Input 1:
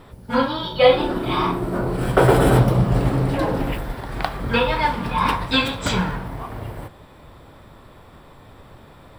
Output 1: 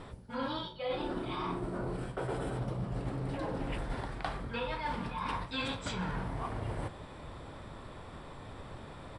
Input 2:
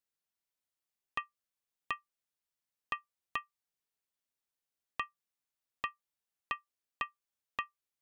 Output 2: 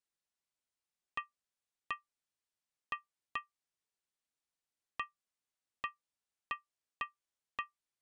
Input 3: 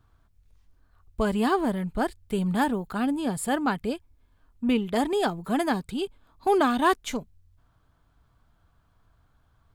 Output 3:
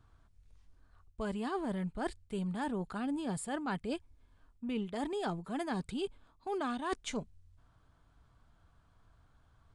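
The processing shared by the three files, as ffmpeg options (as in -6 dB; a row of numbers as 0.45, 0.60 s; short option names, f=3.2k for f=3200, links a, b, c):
-af "aresample=22050,aresample=44100,areverse,acompressor=threshold=-31dB:ratio=16,areverse,volume=-1.5dB"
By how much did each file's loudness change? -18.0, -2.5, -11.0 LU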